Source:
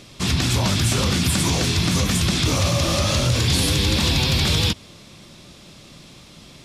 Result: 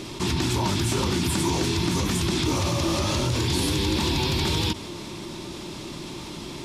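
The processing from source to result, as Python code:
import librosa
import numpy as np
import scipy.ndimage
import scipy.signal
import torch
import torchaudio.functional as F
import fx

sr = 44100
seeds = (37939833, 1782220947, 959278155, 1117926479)

y = fx.peak_eq(x, sr, hz=500.0, db=-3.5, octaves=0.31)
y = fx.small_body(y, sr, hz=(350.0, 910.0), ring_ms=30, db=12)
y = fx.env_flatten(y, sr, amount_pct=50)
y = y * librosa.db_to_amplitude(-8.0)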